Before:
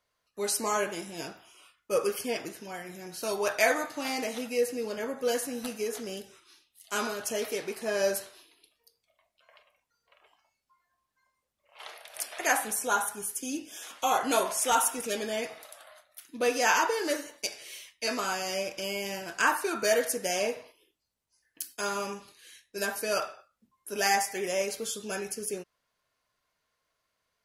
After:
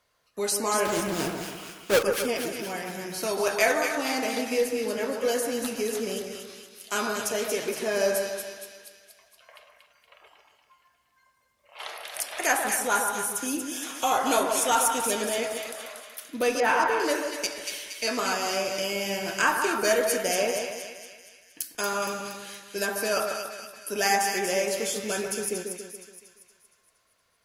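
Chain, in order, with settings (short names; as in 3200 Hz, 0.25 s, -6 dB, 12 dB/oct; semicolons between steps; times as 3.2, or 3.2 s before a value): 0.85–2.03 half-waves squared off; 16.6–17 LPF 2100 Hz 12 dB/oct; in parallel at +3 dB: compressor, threshold -41 dBFS, peak gain reduction 20.5 dB; on the sum: added harmonics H 2 -22 dB, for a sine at -8 dBFS; split-band echo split 1600 Hz, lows 0.141 s, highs 0.234 s, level -5.5 dB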